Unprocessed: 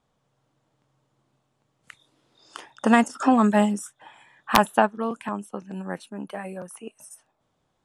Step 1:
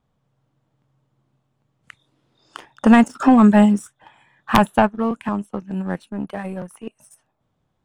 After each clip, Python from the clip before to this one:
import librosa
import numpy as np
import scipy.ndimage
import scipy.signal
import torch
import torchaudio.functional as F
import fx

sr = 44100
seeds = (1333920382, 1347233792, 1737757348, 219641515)

y = fx.leveller(x, sr, passes=1)
y = fx.bass_treble(y, sr, bass_db=8, treble_db=-5)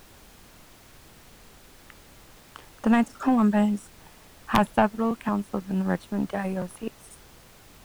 y = fx.rider(x, sr, range_db=5, speed_s=2.0)
y = fx.dmg_noise_colour(y, sr, seeds[0], colour='pink', level_db=-46.0)
y = y * librosa.db_to_amplitude(-5.0)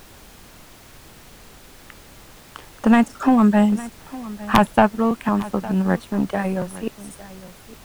y = x + 10.0 ** (-18.0 / 20.0) * np.pad(x, (int(858 * sr / 1000.0), 0))[:len(x)]
y = y * librosa.db_to_amplitude(6.0)